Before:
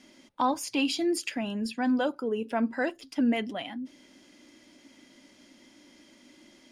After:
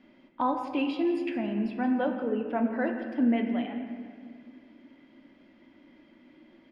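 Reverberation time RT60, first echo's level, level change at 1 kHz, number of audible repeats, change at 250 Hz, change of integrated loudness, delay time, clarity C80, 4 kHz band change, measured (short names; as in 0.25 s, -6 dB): 2.1 s, -15.0 dB, -0.5 dB, 1, +1.5 dB, 0.0 dB, 0.172 s, 6.5 dB, -10.0 dB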